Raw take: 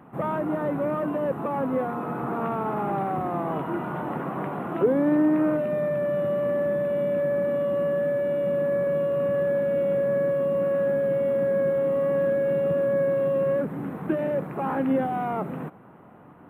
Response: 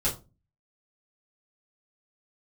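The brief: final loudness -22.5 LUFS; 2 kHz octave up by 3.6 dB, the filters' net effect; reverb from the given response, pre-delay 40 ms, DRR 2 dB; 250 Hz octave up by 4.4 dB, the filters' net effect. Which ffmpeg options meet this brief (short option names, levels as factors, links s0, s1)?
-filter_complex "[0:a]equalizer=f=250:t=o:g=5.5,equalizer=f=2000:t=o:g=4.5,asplit=2[s0][s1];[1:a]atrim=start_sample=2205,adelay=40[s2];[s1][s2]afir=irnorm=-1:irlink=0,volume=0.299[s3];[s0][s3]amix=inputs=2:normalize=0,volume=0.75"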